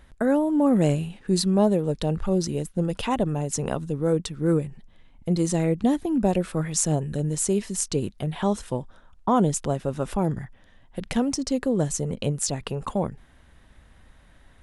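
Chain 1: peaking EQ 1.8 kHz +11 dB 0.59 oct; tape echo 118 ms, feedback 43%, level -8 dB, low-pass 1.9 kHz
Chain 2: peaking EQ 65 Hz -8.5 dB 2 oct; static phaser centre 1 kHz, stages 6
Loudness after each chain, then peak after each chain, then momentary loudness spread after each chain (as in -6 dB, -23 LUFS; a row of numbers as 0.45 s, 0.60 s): -24.5 LUFS, -30.5 LUFS; -7.5 dBFS, -11.5 dBFS; 9 LU, 9 LU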